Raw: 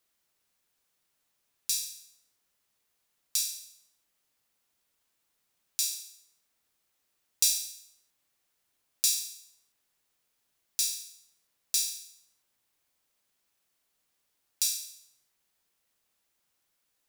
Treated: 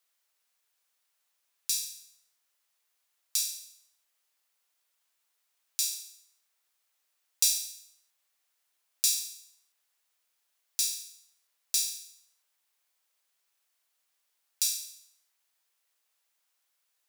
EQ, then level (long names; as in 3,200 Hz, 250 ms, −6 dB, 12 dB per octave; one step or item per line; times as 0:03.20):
Bessel high-pass filter 720 Hz, order 2
0.0 dB